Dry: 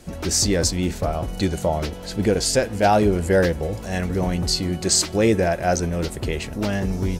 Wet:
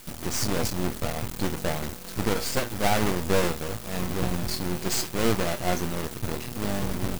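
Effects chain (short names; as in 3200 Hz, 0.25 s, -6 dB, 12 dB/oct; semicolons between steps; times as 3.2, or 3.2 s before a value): half-waves squared off; bell 180 Hz +4.5 dB 1.1 oct; resonator 120 Hz, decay 0.19 s, harmonics all, mix 80%; added noise white -40 dBFS; half-wave rectifier; in parallel at -8 dB: bit-crush 5-bit; on the sum: gain -3.5 dB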